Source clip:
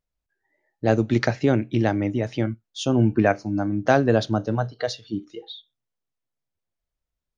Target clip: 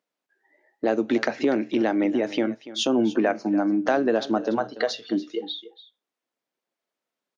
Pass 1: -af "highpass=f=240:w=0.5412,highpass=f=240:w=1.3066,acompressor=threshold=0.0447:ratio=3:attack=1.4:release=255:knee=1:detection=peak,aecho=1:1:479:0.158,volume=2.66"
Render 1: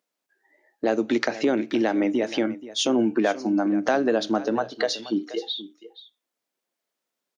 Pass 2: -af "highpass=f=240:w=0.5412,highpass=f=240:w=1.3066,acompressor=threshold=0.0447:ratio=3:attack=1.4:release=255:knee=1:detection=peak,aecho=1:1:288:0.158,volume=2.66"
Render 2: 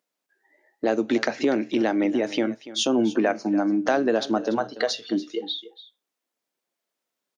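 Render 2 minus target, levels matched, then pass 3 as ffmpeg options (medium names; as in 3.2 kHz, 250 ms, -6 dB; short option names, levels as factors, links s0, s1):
8 kHz band +4.0 dB
-af "highpass=f=240:w=0.5412,highpass=f=240:w=1.3066,highshelf=f=6000:g=-11,acompressor=threshold=0.0447:ratio=3:attack=1.4:release=255:knee=1:detection=peak,aecho=1:1:288:0.158,volume=2.66"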